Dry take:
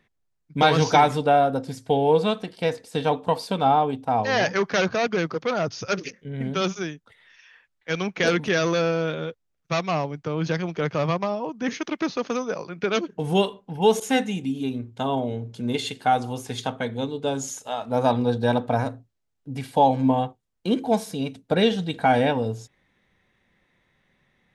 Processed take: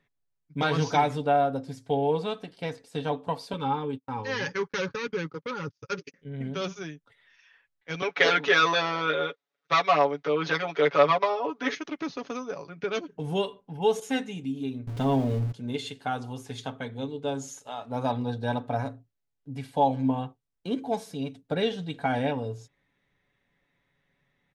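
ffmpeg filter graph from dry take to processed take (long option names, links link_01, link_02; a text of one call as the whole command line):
ffmpeg -i in.wav -filter_complex "[0:a]asettb=1/sr,asplit=3[link_01][link_02][link_03];[link_01]atrim=end=3.534[link_04];[link_02]atrim=start=3.53:end=6.14,asetpts=PTS-STARTPTS,afade=type=in:duration=0.004:curve=qsin,afade=type=out:start_time=2.606:duration=0.004:curve=qsin,asuperstop=centerf=670:order=8:qfactor=2.8,agate=range=-40dB:threshold=-33dB:ratio=16:release=100:detection=peak[link_05];[link_03]atrim=start=6.136[link_06];[link_04][link_05]acrossfade=duration=0.004:curve1=hsin:curve2=qsin[link_07];[link_07][link_06]acrossfade=duration=0.004:curve1=qsin:curve2=hsin,asettb=1/sr,asplit=3[link_08][link_09][link_10];[link_08]atrim=end=8.024[link_11];[link_09]atrim=start=8.02:end=11.75,asetpts=PTS-STARTPTS,afade=type=in:duration=0.004:curve=qsin,afade=type=out:start_time=3.726:duration=0.004:curve=qsin,acontrast=62,highpass=410,equalizer=frequency=470:width_type=q:width=4:gain=4,equalizer=frequency=1300:width_type=q:width=4:gain=5,equalizer=frequency=2000:width_type=q:width=4:gain=4,equalizer=frequency=3700:width_type=q:width=4:gain=7,lowpass=frequency=5800:width=0.5412,lowpass=frequency=5800:width=1.3066,aecho=1:1:7:0.85,atrim=end_sample=164493[link_12];[link_10]atrim=start=11.746[link_13];[link_11][link_12]acrossfade=duration=0.004:curve1=hsin:curve2=qsin[link_14];[link_14][link_13]acrossfade=duration=0.004:curve1=qsin:curve2=hsin,asettb=1/sr,asplit=3[link_15][link_16][link_17];[link_15]atrim=end=14.874[link_18];[link_16]atrim=start=14.87:end=15.52,asetpts=PTS-STARTPTS,afade=type=in:duration=0.004:curve=qsin,afade=type=out:start_time=0.646:duration=0.004:curve=qsin,aeval=exprs='val(0)+0.5*0.0251*sgn(val(0))':channel_layout=same,lowshelf=frequency=360:gain=10[link_19];[link_17]atrim=start=15.516[link_20];[link_18][link_19]acrossfade=duration=0.004:curve1=hsin:curve2=qsin[link_21];[link_21][link_20]acrossfade=duration=0.004:curve1=qsin:curve2=hsin,highshelf=frequency=8800:gain=-6,aecho=1:1:7.1:0.46,volume=-7.5dB" out.wav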